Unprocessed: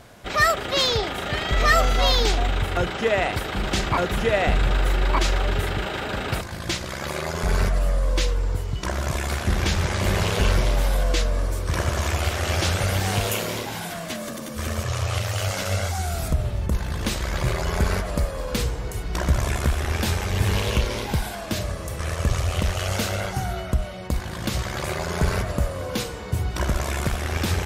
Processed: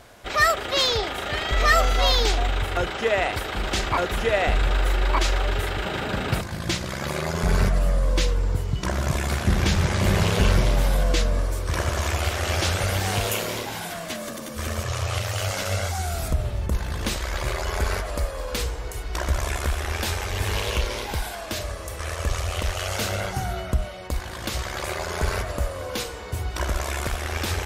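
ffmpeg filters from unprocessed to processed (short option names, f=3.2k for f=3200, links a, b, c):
-af "asetnsamples=n=441:p=0,asendcmd='5.85 equalizer g 4.5;11.41 equalizer g -4;17.17 equalizer g -12.5;23.01 equalizer g -2.5;23.88 equalizer g -10.5',equalizer=f=160:t=o:w=1.4:g=-7.5"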